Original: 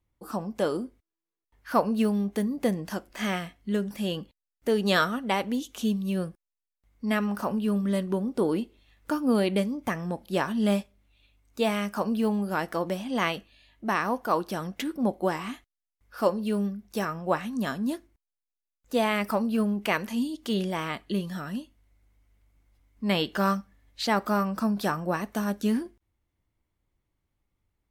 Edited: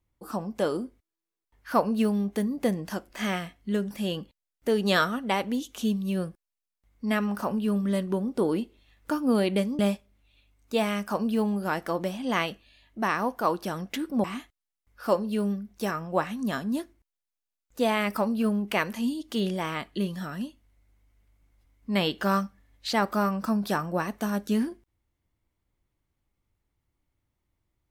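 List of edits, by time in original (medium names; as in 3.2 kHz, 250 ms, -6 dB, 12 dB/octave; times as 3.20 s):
9.79–10.65 s: delete
15.10–15.38 s: delete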